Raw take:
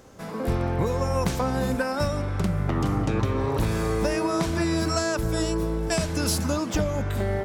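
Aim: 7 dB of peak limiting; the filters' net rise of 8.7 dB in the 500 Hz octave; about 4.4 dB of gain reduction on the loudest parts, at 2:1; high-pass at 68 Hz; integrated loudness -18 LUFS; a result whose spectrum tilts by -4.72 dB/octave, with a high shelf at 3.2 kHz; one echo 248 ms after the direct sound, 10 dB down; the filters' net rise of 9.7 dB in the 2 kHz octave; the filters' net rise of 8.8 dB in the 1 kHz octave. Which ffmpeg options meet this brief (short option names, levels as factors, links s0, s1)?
-af "highpass=68,equalizer=f=500:t=o:g=8.5,equalizer=f=1000:t=o:g=5.5,equalizer=f=2000:t=o:g=7.5,highshelf=f=3200:g=8.5,acompressor=threshold=0.0891:ratio=2,alimiter=limit=0.178:level=0:latency=1,aecho=1:1:248:0.316,volume=2"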